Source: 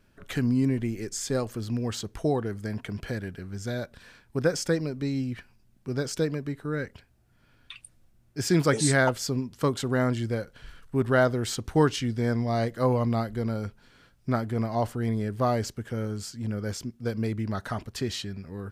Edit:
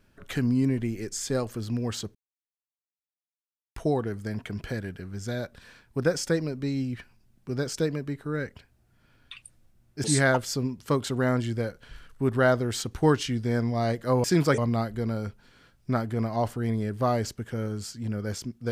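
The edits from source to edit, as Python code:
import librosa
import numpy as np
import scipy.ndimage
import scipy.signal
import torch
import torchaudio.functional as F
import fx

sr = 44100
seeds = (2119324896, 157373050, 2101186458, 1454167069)

y = fx.edit(x, sr, fx.insert_silence(at_s=2.15, length_s=1.61),
    fx.move(start_s=8.43, length_s=0.34, to_s=12.97), tone=tone)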